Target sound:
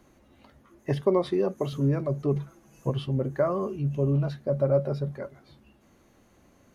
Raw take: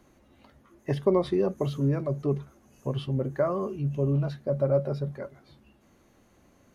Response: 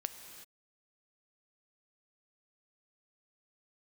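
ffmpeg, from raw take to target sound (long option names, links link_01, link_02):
-filter_complex "[0:a]asettb=1/sr,asplit=3[link_01][link_02][link_03];[link_01]atrim=end=1.014[link_04];[link_02]atrim=start=1.01:end=1.73,asetpts=PTS-STARTPTS,afade=type=in:duration=0.004:curve=qsin,afade=type=out:start_time=0.716:duration=0.004:curve=qsin,highpass=frequency=200:poles=1[link_05];[link_03]atrim=start=1.726[link_06];[link_04][link_05]acrossfade=duration=0.004:curve1=hsin:curve2=qsin[link_07];[link_07][link_06]acrossfade=duration=0.004:curve1=qsin:curve2=hsin,asettb=1/sr,asplit=3[link_08][link_09][link_10];[link_08]atrim=end=2.354[link_11];[link_09]atrim=start=2.35:end=2.9,asetpts=PTS-STARTPTS,afade=type=in:duration=0.004:curve=qsin,afade=type=out:start_time=0.546:duration=0.004:curve=qsin,aecho=1:1:6.1:0.81,atrim=end_sample=24255[link_12];[link_10]atrim=start=2.896[link_13];[link_11][link_12]acrossfade=duration=0.004:curve1=hsin:curve2=qsin[link_14];[link_14][link_13]acrossfade=duration=0.004:curve1=qsin:curve2=hsin,volume=1dB"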